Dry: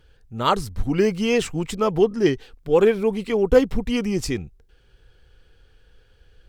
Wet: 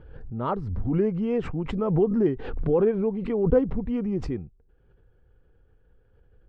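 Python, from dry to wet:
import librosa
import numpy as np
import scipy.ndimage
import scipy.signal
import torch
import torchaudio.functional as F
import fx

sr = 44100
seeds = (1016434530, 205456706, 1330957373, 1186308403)

y = scipy.signal.sosfilt(scipy.signal.butter(2, 1200.0, 'lowpass', fs=sr, output='sos'), x)
y = fx.peak_eq(y, sr, hz=180.0, db=4.5, octaves=2.7)
y = fx.pre_swell(y, sr, db_per_s=47.0)
y = F.gain(torch.from_numpy(y), -8.0).numpy()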